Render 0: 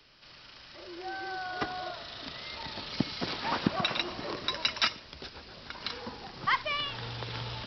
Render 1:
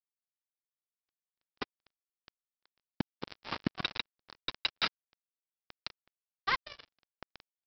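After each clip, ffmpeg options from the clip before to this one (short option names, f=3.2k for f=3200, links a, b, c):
-af "bandreject=f=60:t=h:w=6,bandreject=f=120:t=h:w=6,aresample=11025,acrusher=bits=3:mix=0:aa=0.5,aresample=44100,volume=-4dB"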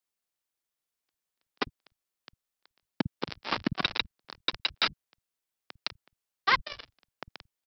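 -filter_complex "[0:a]acrossover=split=150[a][b];[a]adelay=50[c];[c][b]amix=inputs=2:normalize=0,alimiter=limit=-20.5dB:level=0:latency=1:release=92,volume=8dB"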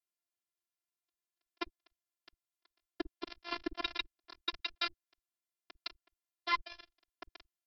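-af "afftfilt=real='hypot(re,im)*cos(PI*b)':imag='0':win_size=512:overlap=0.75,volume=-5dB" -ar 48000 -c:a libvorbis -b:a 192k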